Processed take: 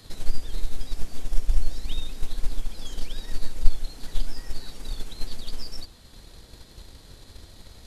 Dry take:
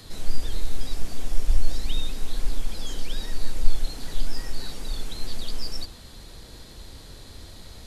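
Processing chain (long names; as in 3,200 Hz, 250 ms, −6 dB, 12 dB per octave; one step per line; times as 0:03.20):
transient designer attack +6 dB, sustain −2 dB
level −4.5 dB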